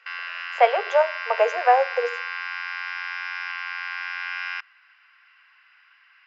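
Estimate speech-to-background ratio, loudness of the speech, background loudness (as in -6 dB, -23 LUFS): 8.0 dB, -22.0 LUFS, -30.0 LUFS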